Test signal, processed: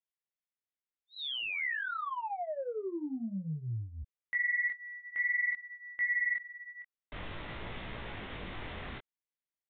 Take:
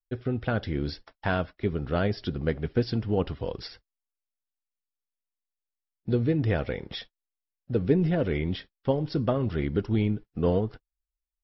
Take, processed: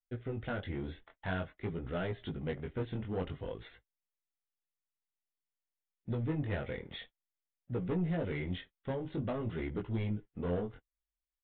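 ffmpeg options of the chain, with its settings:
-af "equalizer=f=2k:w=5.6:g=5.5,aresample=8000,asoftclip=type=tanh:threshold=-22dB,aresample=44100,flanger=delay=16.5:depth=7.1:speed=0.51,volume=-4dB"

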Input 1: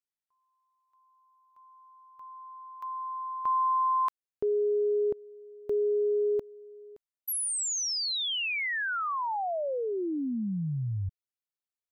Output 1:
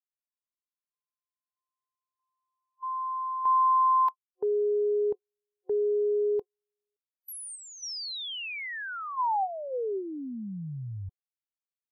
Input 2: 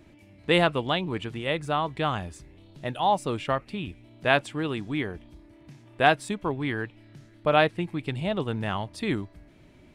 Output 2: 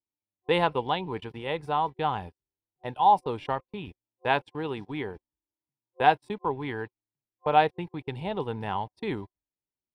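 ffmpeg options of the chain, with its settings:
-af "agate=range=-43dB:threshold=-40dB:ratio=16:release=57:detection=peak,superequalizer=7b=2:9b=3.16:15b=0.316:16b=0.631,volume=-5.5dB"

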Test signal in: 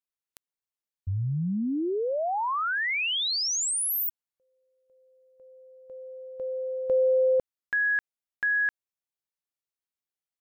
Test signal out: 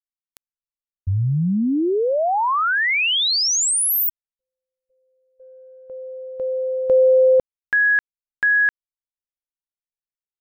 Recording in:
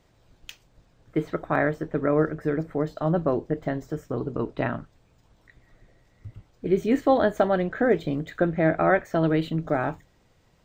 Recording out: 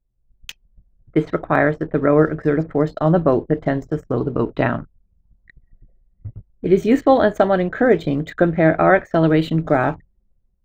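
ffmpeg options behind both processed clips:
-af "dynaudnorm=f=150:g=5:m=7.5dB,anlmdn=0.398,volume=1dB"

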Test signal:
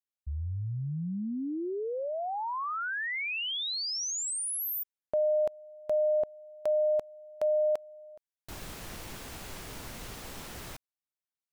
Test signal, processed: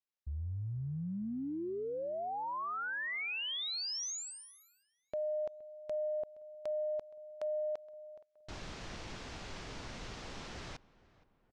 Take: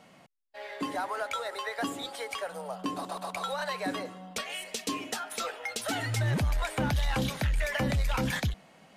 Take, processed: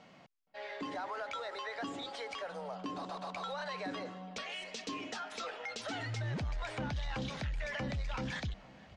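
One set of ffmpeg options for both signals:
-filter_complex "[0:a]lowpass=f=6.2k:w=0.5412,lowpass=f=6.2k:w=1.3066,acompressor=threshold=-35dB:ratio=2.5:attack=0.41:release=81:knee=1:detection=peak,asplit=2[a][b];[b]adelay=470,lowpass=f=2k:p=1,volume=-20.5dB,asplit=2[c][d];[d]adelay=470,lowpass=f=2k:p=1,volume=0.49,asplit=2[e][f];[f]adelay=470,lowpass=f=2k:p=1,volume=0.49,asplit=2[g][h];[h]adelay=470,lowpass=f=2k:p=1,volume=0.49[i];[a][c][e][g][i]amix=inputs=5:normalize=0,volume=-2dB"

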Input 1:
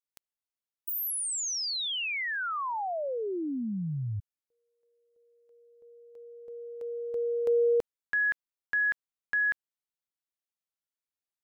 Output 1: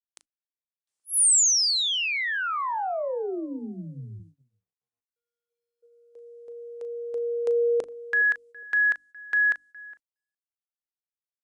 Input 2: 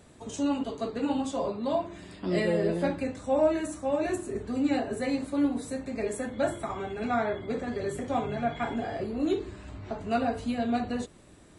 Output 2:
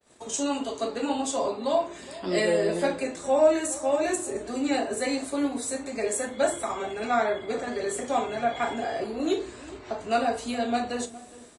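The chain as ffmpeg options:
-filter_complex "[0:a]bass=f=250:g=-11,treble=f=4k:g=5,bandreject=f=50:t=h:w=6,bandreject=f=100:t=h:w=6,bandreject=f=150:t=h:w=6,bandreject=f=200:t=h:w=6,bandreject=f=250:t=h:w=6,bandreject=f=300:t=h:w=6,asplit=2[a][b];[b]adelay=413,lowpass=f=1.2k:p=1,volume=-17dB,asplit=2[c][d];[d]adelay=413,lowpass=f=1.2k:p=1,volume=0.18[e];[a][c][e]amix=inputs=3:normalize=0,adynamicequalizer=threshold=0.00316:dfrequency=8200:dqfactor=1.1:tfrequency=8200:tqfactor=1.1:attack=5:release=100:ratio=0.375:range=2.5:mode=boostabove:tftype=bell,asplit=2[f][g];[g]adelay=37,volume=-13dB[h];[f][h]amix=inputs=2:normalize=0,agate=range=-33dB:threshold=-53dB:ratio=3:release=106:detection=rms,aresample=22050,aresample=44100,volume=4dB" -ar 48000 -c:a libopus -b:a 128k

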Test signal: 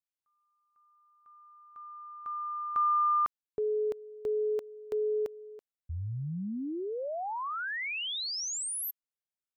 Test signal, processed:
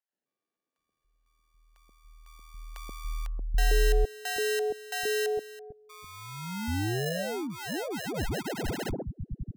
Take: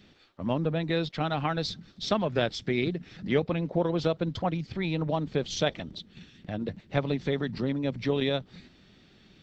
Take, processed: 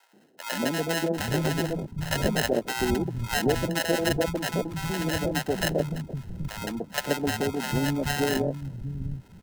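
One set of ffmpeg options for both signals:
-filter_complex "[0:a]acrusher=samples=38:mix=1:aa=0.000001,acrossover=split=180|710[a][b][c];[b]adelay=130[d];[a]adelay=780[e];[e][d][c]amix=inputs=3:normalize=0,volume=4dB"

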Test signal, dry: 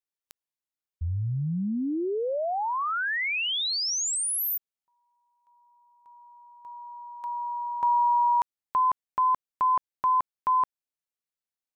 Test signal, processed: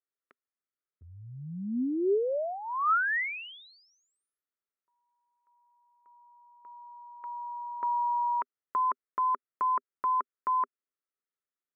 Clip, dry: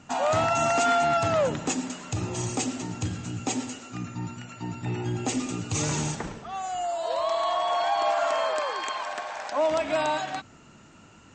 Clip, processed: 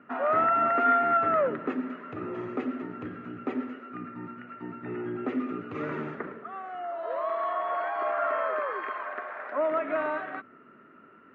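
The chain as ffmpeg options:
-af "highpass=230,equalizer=f=250:t=q:w=4:g=6,equalizer=f=400:t=q:w=4:g=9,equalizer=f=580:t=q:w=4:g=3,equalizer=f=830:t=q:w=4:g=-9,equalizer=f=1.3k:t=q:w=4:g=10,equalizer=f=1.9k:t=q:w=4:g=5,lowpass=f=2.1k:w=0.5412,lowpass=f=2.1k:w=1.3066,volume=-4.5dB"

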